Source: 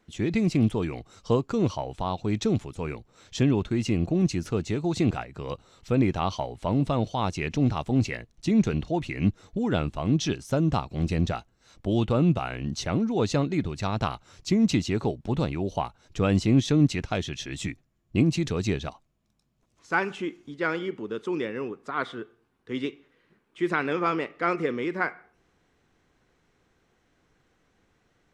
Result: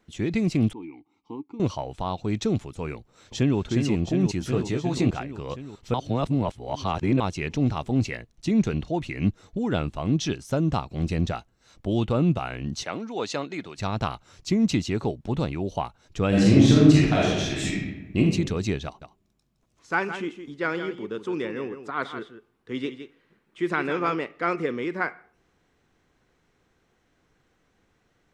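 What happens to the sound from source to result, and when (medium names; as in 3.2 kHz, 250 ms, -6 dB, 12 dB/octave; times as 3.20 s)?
0.73–1.60 s: vowel filter u
2.95–3.59 s: echo throw 360 ms, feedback 75%, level -5 dB
4.39–5.10 s: doubling 16 ms -4 dB
5.94–7.20 s: reverse
12.83–13.78 s: frequency weighting A
16.28–18.18 s: reverb throw, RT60 1.1 s, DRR -6 dB
18.85–24.15 s: delay 164 ms -10 dB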